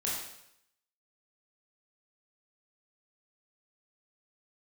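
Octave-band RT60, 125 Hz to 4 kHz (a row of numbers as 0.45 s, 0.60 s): 0.80 s, 0.70 s, 0.75 s, 0.75 s, 0.75 s, 0.75 s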